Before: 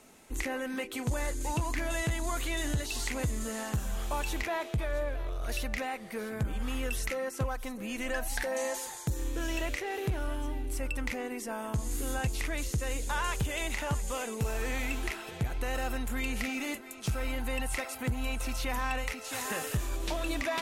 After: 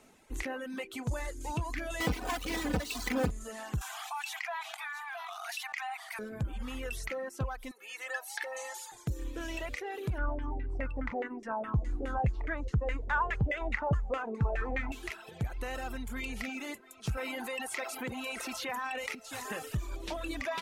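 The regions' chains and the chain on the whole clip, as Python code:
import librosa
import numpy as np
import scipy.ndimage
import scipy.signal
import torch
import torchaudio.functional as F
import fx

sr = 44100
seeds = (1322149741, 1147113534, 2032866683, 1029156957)

y = fx.chain(x, sr, fx.halfwave_hold(),
    fx.highpass(hz=81.0, slope=12),
    fx.comb(ms=4.0, depth=0.7), at=(2.0, 3.31))
y = fx.chain(y, sr, fx.brickwall_highpass(low_hz=670.0),
    fx.env_flatten(amount_pct=70), at=(3.81, 6.19))
y = fx.chain(y, sr, fx.highpass(hz=770.0, slope=12),
    fx.comb(ms=2.3, depth=0.56), at=(7.71, 8.92))
y = fx.chain(y, sr, fx.bass_treble(bass_db=5, treble_db=12),
    fx.filter_lfo_lowpass(shape='saw_down', hz=4.8, low_hz=560.0, high_hz=2100.0, q=3.2), at=(10.18, 14.92))
y = fx.chain(y, sr, fx.highpass(hz=280.0, slope=12),
    fx.echo_single(ms=611, db=-15.0),
    fx.env_flatten(amount_pct=70), at=(17.17, 19.15))
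y = fx.dereverb_blind(y, sr, rt60_s=1.1)
y = fx.high_shelf(y, sr, hz=6600.0, db=-6.5)
y = y * 10.0 ** (-2.0 / 20.0)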